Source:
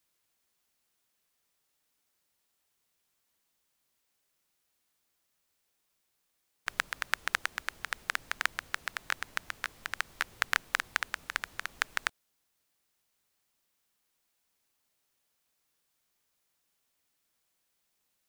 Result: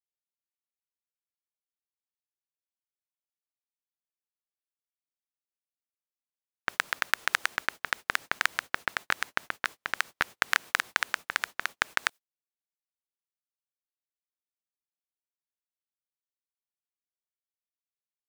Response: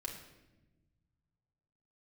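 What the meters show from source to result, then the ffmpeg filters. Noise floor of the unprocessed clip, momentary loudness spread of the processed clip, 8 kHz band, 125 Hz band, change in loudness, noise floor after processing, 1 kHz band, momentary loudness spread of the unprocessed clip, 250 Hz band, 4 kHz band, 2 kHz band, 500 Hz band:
−79 dBFS, 6 LU, +3.0 dB, +4.0 dB, +4.0 dB, below −85 dBFS, +4.5 dB, 7 LU, +6.5 dB, +3.5 dB, +4.0 dB, +6.0 dB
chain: -filter_complex "[0:a]highpass=frequency=500:poles=1,agate=range=-37dB:threshold=-45dB:ratio=16:detection=peak,asplit=2[link_01][link_02];[link_02]alimiter=limit=-14.5dB:level=0:latency=1:release=58,volume=0dB[link_03];[link_01][link_03]amix=inputs=2:normalize=0,volume=1dB"

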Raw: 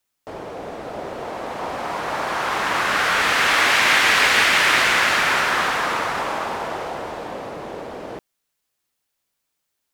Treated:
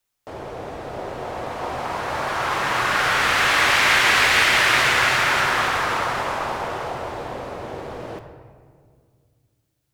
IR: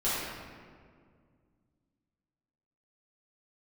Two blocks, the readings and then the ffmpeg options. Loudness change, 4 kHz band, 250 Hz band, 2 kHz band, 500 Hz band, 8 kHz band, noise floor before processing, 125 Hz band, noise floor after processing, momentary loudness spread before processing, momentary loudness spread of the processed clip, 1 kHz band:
−1.0 dB, −0.5 dB, −1.0 dB, −0.5 dB, −0.5 dB, −1.0 dB, −77 dBFS, +5.0 dB, −72 dBFS, 19 LU, 19 LU, 0.0 dB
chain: -filter_complex "[0:a]asplit=2[link_01][link_02];[link_02]lowshelf=frequency=160:width_type=q:width=3:gain=8[link_03];[1:a]atrim=start_sample=2205[link_04];[link_03][link_04]afir=irnorm=-1:irlink=0,volume=-15dB[link_05];[link_01][link_05]amix=inputs=2:normalize=0,volume=-2.5dB"

